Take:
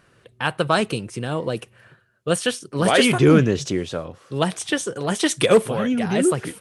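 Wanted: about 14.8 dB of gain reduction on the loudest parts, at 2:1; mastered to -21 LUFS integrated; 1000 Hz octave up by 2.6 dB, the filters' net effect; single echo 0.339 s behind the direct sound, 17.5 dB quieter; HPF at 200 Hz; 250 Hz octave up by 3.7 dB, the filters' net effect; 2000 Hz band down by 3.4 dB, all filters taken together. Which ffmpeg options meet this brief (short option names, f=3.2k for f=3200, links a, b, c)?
-af "highpass=200,equalizer=f=250:t=o:g=6.5,equalizer=f=1k:t=o:g=5,equalizer=f=2k:t=o:g=-6.5,acompressor=threshold=-35dB:ratio=2,aecho=1:1:339:0.133,volume=10dB"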